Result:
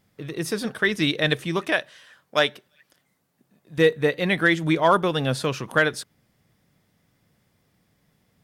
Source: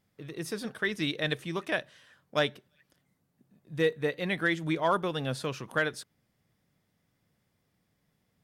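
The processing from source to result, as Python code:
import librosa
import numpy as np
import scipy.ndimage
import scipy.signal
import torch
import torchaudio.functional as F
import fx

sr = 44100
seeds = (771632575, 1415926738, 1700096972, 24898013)

y = fx.low_shelf(x, sr, hz=290.0, db=-11.5, at=(1.72, 3.78))
y = y * librosa.db_to_amplitude(8.5)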